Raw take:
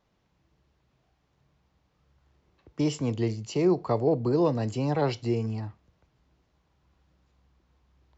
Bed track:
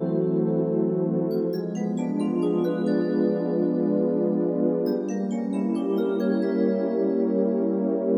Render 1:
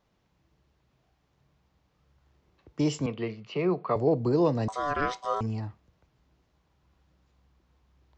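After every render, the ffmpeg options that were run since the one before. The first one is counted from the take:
ffmpeg -i in.wav -filter_complex "[0:a]asettb=1/sr,asplit=3[link_01][link_02][link_03];[link_01]atrim=end=3.064[link_04];[link_02]atrim=start=3.06:end=3.96,asetpts=PTS-STARTPTS,afade=type=in:duration=0.004:curve=qsin,afade=type=out:start_time=0.896:duration=0.004:curve=qsin,highpass=frequency=150:width=0.5412,highpass=frequency=150:width=1.3066,equalizer=frequency=230:width_type=q:width=4:gain=-4,equalizer=frequency=320:width_type=q:width=4:gain=-8,equalizer=frequency=840:width_type=q:width=4:gain=-5,equalizer=frequency=1200:width_type=q:width=4:gain=7,equalizer=frequency=2400:width_type=q:width=4:gain=5,lowpass=frequency=3500:width=0.5412,lowpass=frequency=3500:width=1.3066[link_05];[link_03]atrim=start=3.956[link_06];[link_04][link_05]acrossfade=duration=0.004:curve1=hsin:curve2=qsin[link_07];[link_07][link_06]acrossfade=duration=0.004:curve1=qsin:curve2=hsin,asettb=1/sr,asplit=3[link_08][link_09][link_10];[link_08]atrim=end=4.684[link_11];[link_09]atrim=start=4.68:end=5.41,asetpts=PTS-STARTPTS,afade=type=in:duration=0.004:curve=qsin,afade=type=out:start_time=0.726:duration=0.004:curve=qsin,aeval=exprs='val(0)*sin(2*PI*870*n/s)':channel_layout=same[link_12];[link_10]atrim=start=5.406[link_13];[link_11][link_12]acrossfade=duration=0.004:curve1=hsin:curve2=qsin[link_14];[link_14][link_13]acrossfade=duration=0.004:curve1=qsin:curve2=hsin" out.wav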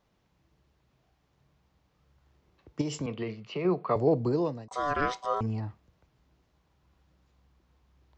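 ffmpeg -i in.wav -filter_complex "[0:a]asettb=1/sr,asplit=3[link_01][link_02][link_03];[link_01]atrim=end=2.814[link_04];[link_02]atrim=start=2.81:end=3.65,asetpts=PTS-STARTPTS,afade=type=in:duration=0.004:curve=qsin,afade=type=out:start_time=0.836:duration=0.004:curve=qsin,acompressor=threshold=-28dB:ratio=6:attack=3.2:release=140:knee=1:detection=peak[link_05];[link_03]atrim=start=3.646[link_06];[link_04][link_05]acrossfade=duration=0.004:curve1=hsin:curve2=qsin[link_07];[link_07][link_06]acrossfade=duration=0.004:curve1=qsin:curve2=hsin,asettb=1/sr,asplit=3[link_08][link_09][link_10];[link_08]atrim=end=5.264[link_11];[link_09]atrim=start=5.26:end=5.68,asetpts=PTS-STARTPTS,afade=type=in:duration=0.004:curve=qsin,afade=type=out:start_time=0.416:duration=0.004:curve=qsin,highshelf=frequency=5300:gain=-10.5[link_12];[link_10]atrim=start=5.676[link_13];[link_11][link_12]acrossfade=duration=0.004:curve1=hsin:curve2=qsin[link_14];[link_14][link_13]acrossfade=duration=0.004:curve1=qsin:curve2=hsin,asplit=2[link_15][link_16];[link_15]atrim=end=4.71,asetpts=PTS-STARTPTS,afade=type=out:start_time=4.19:duration=0.52[link_17];[link_16]atrim=start=4.71,asetpts=PTS-STARTPTS,afade=type=in:duration=0.004:curve=hsin[link_18];[link_17][link_18]concat=n=2:v=0:a=1" out.wav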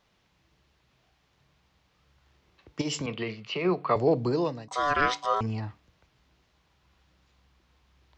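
ffmpeg -i in.wav -af "equalizer=frequency=3200:width_type=o:width=2.9:gain=9,bandreject=frequency=145.3:width_type=h:width=4,bandreject=frequency=290.6:width_type=h:width=4" out.wav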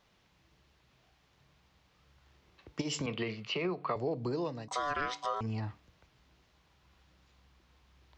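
ffmpeg -i in.wav -af "acompressor=threshold=-31dB:ratio=6" out.wav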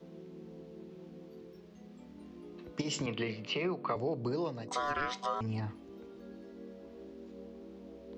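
ffmpeg -i in.wav -i bed.wav -filter_complex "[1:a]volume=-26dB[link_01];[0:a][link_01]amix=inputs=2:normalize=0" out.wav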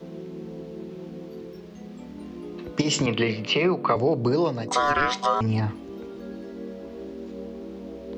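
ffmpeg -i in.wav -af "volume=12dB" out.wav

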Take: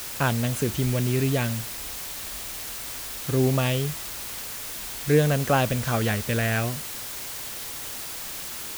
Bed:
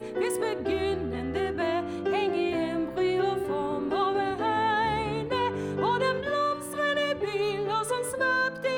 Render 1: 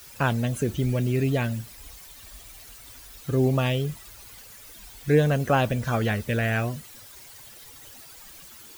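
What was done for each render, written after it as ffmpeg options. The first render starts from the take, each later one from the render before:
ffmpeg -i in.wav -af "afftdn=noise_reduction=14:noise_floor=-35" out.wav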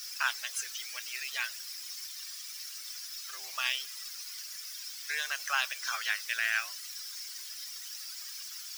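ffmpeg -i in.wav -af "highpass=frequency=1300:width=0.5412,highpass=frequency=1300:width=1.3066,equalizer=frequency=5300:width=2.9:gain=15" out.wav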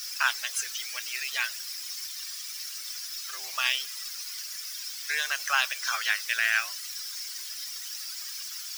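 ffmpeg -i in.wav -af "volume=5dB" out.wav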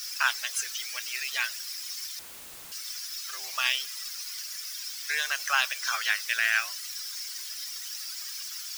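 ffmpeg -i in.wav -filter_complex "[0:a]asettb=1/sr,asplit=3[link_01][link_02][link_03];[link_01]atrim=end=2.194[link_04];[link_02]atrim=start=2.19:end=2.72,asetpts=PTS-STARTPTS,afade=type=in:duration=0.004:curve=qsin,afade=type=out:start_time=0.526:duration=0.004:curve=qsin,aeval=exprs='(mod(100*val(0)+1,2)-1)/100':channel_layout=same[link_05];[link_03]atrim=start=2.716[link_06];[link_04][link_05]acrossfade=duration=0.004:curve1=hsin:curve2=qsin[link_07];[link_07][link_06]acrossfade=duration=0.004:curve1=qsin:curve2=hsin" out.wav

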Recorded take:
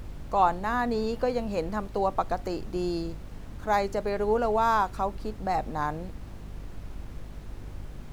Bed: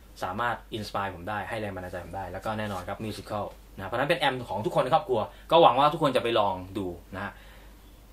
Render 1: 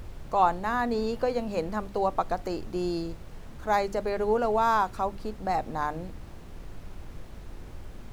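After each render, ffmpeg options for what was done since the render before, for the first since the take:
ffmpeg -i in.wav -af "bandreject=frequency=50:width_type=h:width=4,bandreject=frequency=100:width_type=h:width=4,bandreject=frequency=150:width_type=h:width=4,bandreject=frequency=200:width_type=h:width=4,bandreject=frequency=250:width_type=h:width=4,bandreject=frequency=300:width_type=h:width=4" out.wav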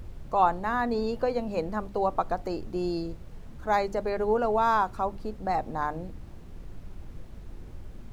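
ffmpeg -i in.wav -af "afftdn=noise_reduction=6:noise_floor=-44" out.wav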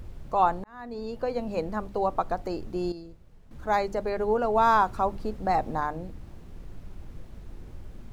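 ffmpeg -i in.wav -filter_complex "[0:a]asplit=6[link_01][link_02][link_03][link_04][link_05][link_06];[link_01]atrim=end=0.64,asetpts=PTS-STARTPTS,afade=type=out:start_time=0.636:duration=0.004:curve=hsin[link_07];[link_02]atrim=start=0.64:end=2.922,asetpts=PTS-STARTPTS,afade=type=in:duration=0.83[link_08];[link_03]atrim=start=2.918:end=3.512,asetpts=PTS-STARTPTS,volume=-10.5dB[link_09];[link_04]atrim=start=3.508:end=4.562[link_10];[link_05]atrim=start=4.558:end=5.802,asetpts=PTS-STARTPTS,volume=3dB[link_11];[link_06]atrim=start=5.798[link_12];[link_07][link_08]concat=n=2:v=0:a=1[link_13];[link_13][link_09]acrossfade=duration=0.004:curve1=hsin:curve2=hsin[link_14];[link_14][link_10]acrossfade=duration=0.004:curve1=hsin:curve2=hsin[link_15];[link_15][link_11]acrossfade=duration=0.004:curve1=hsin:curve2=hsin[link_16];[link_16][link_12]acrossfade=duration=0.004:curve1=hsin:curve2=hsin" out.wav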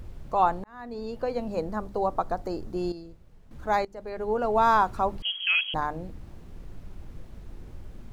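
ffmpeg -i in.wav -filter_complex "[0:a]asettb=1/sr,asplit=3[link_01][link_02][link_03];[link_01]atrim=end=1.484[link_04];[link_02]atrim=start=1.48:end=2.77,asetpts=PTS-STARTPTS,afade=type=in:duration=0.004:curve=qsin,afade=type=out:start_time=1.286:duration=0.004:curve=qsin,equalizer=frequency=2600:width=1.5:gain=-5.5[link_05];[link_03]atrim=start=2.766[link_06];[link_04][link_05]acrossfade=duration=0.004:curve1=hsin:curve2=qsin[link_07];[link_07][link_06]acrossfade=duration=0.004:curve1=qsin:curve2=hsin,asettb=1/sr,asplit=3[link_08][link_09][link_10];[link_08]atrim=end=5.224[link_11];[link_09]atrim=start=5.22:end=5.74,asetpts=PTS-STARTPTS,afade=type=in:duration=0.004:curve=qsin,afade=type=out:start_time=0.516:duration=0.004:curve=qsin,lowpass=frequency=2800:width_type=q:width=0.5098,lowpass=frequency=2800:width_type=q:width=0.6013,lowpass=frequency=2800:width_type=q:width=0.9,lowpass=frequency=2800:width_type=q:width=2.563,afreqshift=-3300[link_12];[link_10]atrim=start=5.736[link_13];[link_11][link_12]acrossfade=duration=0.004:curve1=hsin:curve2=qsin[link_14];[link_14][link_13]acrossfade=duration=0.004:curve1=qsin:curve2=hsin,asplit=2[link_15][link_16];[link_15]atrim=end=3.85,asetpts=PTS-STARTPTS,afade=type=out:start_time=3.846:duration=0.004:curve=hsin:silence=0.1[link_17];[link_16]atrim=start=3.85,asetpts=PTS-STARTPTS,afade=type=in:duration=0.64:silence=0.1[link_18];[link_17][link_18]concat=n=2:v=0:a=1" out.wav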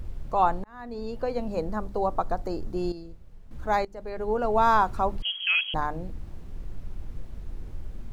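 ffmpeg -i in.wav -af "lowshelf=frequency=66:gain=8" out.wav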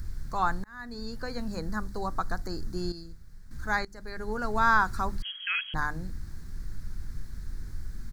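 ffmpeg -i in.wav -filter_complex "[0:a]acrossover=split=3700[link_01][link_02];[link_02]acompressor=threshold=-52dB:ratio=4:attack=1:release=60[link_03];[link_01][link_03]amix=inputs=2:normalize=0,firequalizer=gain_entry='entry(160,0);entry(570,-13);entry(1600,8);entry(2800,-9);entry(4300,9)':delay=0.05:min_phase=1" out.wav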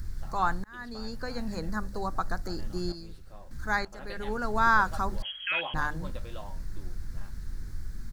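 ffmpeg -i in.wav -i bed.wav -filter_complex "[1:a]volume=-20.5dB[link_01];[0:a][link_01]amix=inputs=2:normalize=0" out.wav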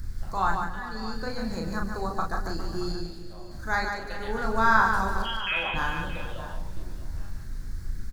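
ffmpeg -i in.wav -filter_complex "[0:a]asplit=2[link_01][link_02];[link_02]adelay=36,volume=-3.5dB[link_03];[link_01][link_03]amix=inputs=2:normalize=0,aecho=1:1:147|273|409|625:0.531|0.119|0.188|0.178" out.wav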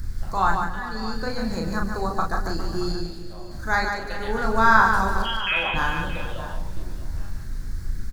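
ffmpeg -i in.wav -af "volume=4.5dB" out.wav

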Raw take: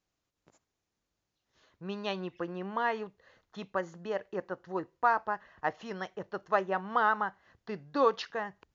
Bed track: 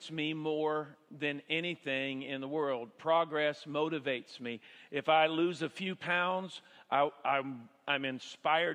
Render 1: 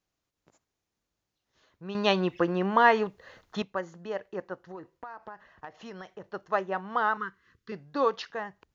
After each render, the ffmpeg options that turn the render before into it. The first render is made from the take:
ffmpeg -i in.wav -filter_complex "[0:a]asettb=1/sr,asplit=3[link_01][link_02][link_03];[link_01]atrim=end=4.564[link_04];[link_02]atrim=start=4.56:end=6.26,asetpts=PTS-STARTPTS,afade=type=in:duration=0.004:curve=qsin,afade=type=out:start_time=1.696:duration=0.004:curve=qsin,acompressor=threshold=-37dB:ratio=12:attack=3.2:release=140:knee=1:detection=peak[link_05];[link_03]atrim=start=6.256[link_06];[link_04][link_05]acrossfade=duration=0.004:curve1=hsin:curve2=qsin[link_07];[link_07][link_06]acrossfade=duration=0.004:curve1=qsin:curve2=hsin,asettb=1/sr,asplit=3[link_08][link_09][link_10];[link_08]atrim=end=7.174[link_11];[link_09]atrim=start=7.17:end=7.72,asetpts=PTS-STARTPTS,afade=type=in:duration=0.004:curve=qsin,afade=type=out:start_time=0.546:duration=0.004:curve=qsin,asuperstop=centerf=710:order=8:qfactor=1.2[link_12];[link_10]atrim=start=7.716[link_13];[link_11][link_12]acrossfade=duration=0.004:curve1=hsin:curve2=qsin[link_14];[link_14][link_13]acrossfade=duration=0.004:curve1=qsin:curve2=hsin,asplit=3[link_15][link_16][link_17];[link_15]atrim=end=1.952[link_18];[link_16]atrim=start=1.948:end=3.622,asetpts=PTS-STARTPTS,volume=10.5dB[link_19];[link_17]atrim=start=3.618[link_20];[link_18][link_19]acrossfade=duration=0.004:curve1=hsin:curve2=hsin[link_21];[link_21][link_20]acrossfade=duration=0.004:curve1=hsin:curve2=hsin" out.wav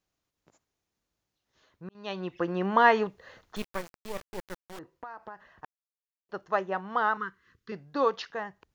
ffmpeg -i in.wav -filter_complex "[0:a]asettb=1/sr,asplit=3[link_01][link_02][link_03];[link_01]atrim=end=3.564[link_04];[link_02]atrim=start=3.56:end=4.79,asetpts=PTS-STARTPTS,afade=type=in:duration=0.004:curve=qsin,afade=type=out:start_time=1.226:duration=0.004:curve=qsin,acrusher=bits=4:dc=4:mix=0:aa=0.000001[link_05];[link_03]atrim=start=4.786[link_06];[link_04][link_05]acrossfade=duration=0.004:curve1=hsin:curve2=qsin[link_07];[link_07][link_06]acrossfade=duration=0.004:curve1=qsin:curve2=hsin,asplit=4[link_08][link_09][link_10][link_11];[link_08]atrim=end=1.89,asetpts=PTS-STARTPTS,afade=type=out:start_time=1.886:duration=0.004:curve=hsin[link_12];[link_09]atrim=start=1.89:end=5.65,asetpts=PTS-STARTPTS,afade=type=in:duration=0.86,afade=type=out:start_time=3.756:duration=0.004:curve=hsin[link_13];[link_10]atrim=start=5.65:end=6.29,asetpts=PTS-STARTPTS,volume=0[link_14];[link_11]atrim=start=6.29,asetpts=PTS-STARTPTS,afade=type=in:duration=0.004:curve=hsin[link_15];[link_12][link_13][link_14][link_15]concat=n=4:v=0:a=1" out.wav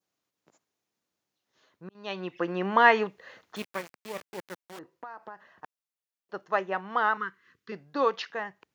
ffmpeg -i in.wav -af "highpass=170,adynamicequalizer=threshold=0.00562:dfrequency=2300:dqfactor=1.6:tfrequency=2300:tqfactor=1.6:attack=5:release=100:ratio=0.375:range=3:mode=boostabove:tftype=bell" out.wav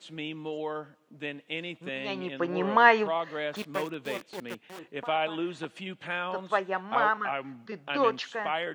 ffmpeg -i in.wav -i bed.wav -filter_complex "[1:a]volume=-1.5dB[link_01];[0:a][link_01]amix=inputs=2:normalize=0" out.wav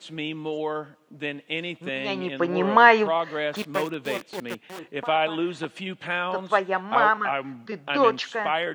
ffmpeg -i in.wav -af "volume=5.5dB,alimiter=limit=-2dB:level=0:latency=1" out.wav

